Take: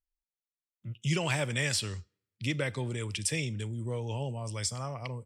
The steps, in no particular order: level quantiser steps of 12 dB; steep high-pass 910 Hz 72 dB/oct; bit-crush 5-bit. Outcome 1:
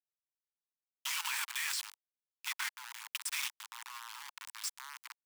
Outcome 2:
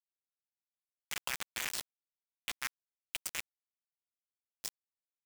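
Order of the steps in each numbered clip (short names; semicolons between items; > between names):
bit-crush > steep high-pass > level quantiser; steep high-pass > level quantiser > bit-crush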